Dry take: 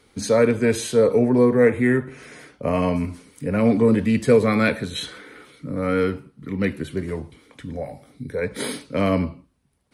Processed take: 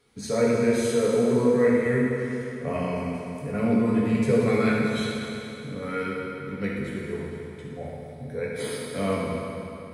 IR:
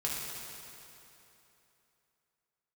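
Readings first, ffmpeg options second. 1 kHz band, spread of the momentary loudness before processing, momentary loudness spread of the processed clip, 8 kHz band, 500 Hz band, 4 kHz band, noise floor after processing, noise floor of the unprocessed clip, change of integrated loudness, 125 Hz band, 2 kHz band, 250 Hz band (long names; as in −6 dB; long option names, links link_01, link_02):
−3.5 dB, 16 LU, 15 LU, −4.0 dB, −4.0 dB, −4.5 dB, −40 dBFS, −60 dBFS, −4.5 dB, −4.0 dB, −4.0 dB, −3.5 dB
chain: -filter_complex "[1:a]atrim=start_sample=2205[link_01];[0:a][link_01]afir=irnorm=-1:irlink=0,volume=-9dB"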